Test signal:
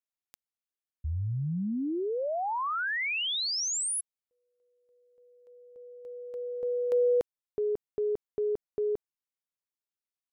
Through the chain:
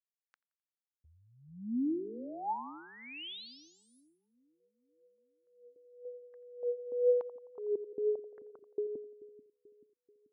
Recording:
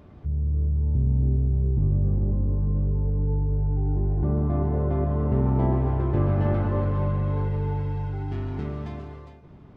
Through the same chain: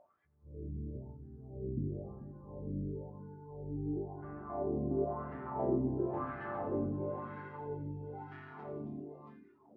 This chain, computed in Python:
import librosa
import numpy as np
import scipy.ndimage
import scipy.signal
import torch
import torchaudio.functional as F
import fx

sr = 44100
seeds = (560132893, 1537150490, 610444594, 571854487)

y = fx.wah_lfo(x, sr, hz=0.98, low_hz=260.0, high_hz=1700.0, q=3.0)
y = fx.echo_split(y, sr, split_hz=330.0, low_ms=435, high_ms=86, feedback_pct=52, wet_db=-12.0)
y = fx.noise_reduce_blind(y, sr, reduce_db=14)